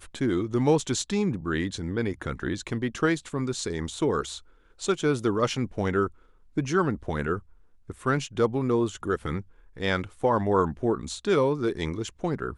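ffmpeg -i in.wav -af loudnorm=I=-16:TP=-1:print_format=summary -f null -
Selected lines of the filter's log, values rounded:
Input Integrated:    -27.4 LUFS
Input True Peak:     -10.6 dBTP
Input LRA:             2.3 LU
Input Threshold:     -37.6 LUFS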